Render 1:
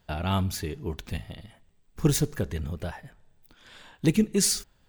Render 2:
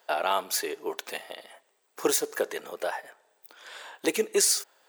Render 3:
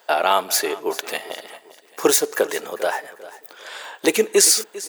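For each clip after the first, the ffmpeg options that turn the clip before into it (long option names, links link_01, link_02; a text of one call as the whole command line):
ffmpeg -i in.wav -af "highpass=frequency=450:width=0.5412,highpass=frequency=450:width=1.3066,alimiter=limit=-20dB:level=0:latency=1:release=238,equalizer=frequency=3200:width=0.92:gain=-4.5,volume=9dB" out.wav
ffmpeg -i in.wav -af "aecho=1:1:397|794|1191:0.133|0.0493|0.0183,volume=8.5dB" out.wav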